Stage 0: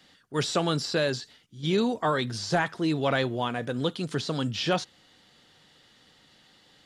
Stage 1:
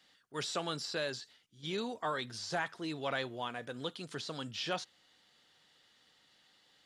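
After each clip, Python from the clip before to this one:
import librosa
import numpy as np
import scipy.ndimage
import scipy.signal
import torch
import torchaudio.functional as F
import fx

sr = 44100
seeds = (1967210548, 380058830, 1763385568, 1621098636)

y = fx.low_shelf(x, sr, hz=410.0, db=-9.5)
y = y * librosa.db_to_amplitude(-7.5)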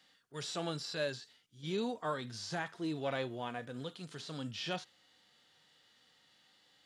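y = fx.hpss(x, sr, part='percussive', gain_db=-11)
y = y * librosa.db_to_amplitude(3.0)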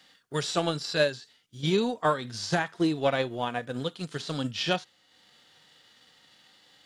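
y = fx.transient(x, sr, attack_db=8, sustain_db=-5)
y = y * librosa.db_to_amplitude(8.5)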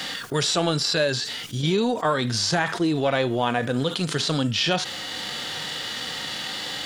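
y = fx.env_flatten(x, sr, amount_pct=70)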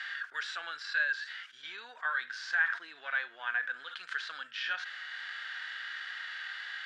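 y = fx.ladder_bandpass(x, sr, hz=1700.0, resonance_pct=75)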